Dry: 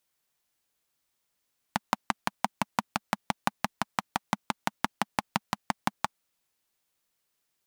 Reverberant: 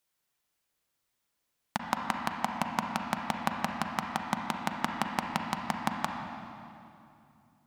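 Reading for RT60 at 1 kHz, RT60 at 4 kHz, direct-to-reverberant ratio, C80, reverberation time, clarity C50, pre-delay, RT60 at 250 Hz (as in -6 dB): 2.5 s, 2.2 s, 1.5 dB, 3.5 dB, 2.7 s, 2.5 dB, 35 ms, 3.3 s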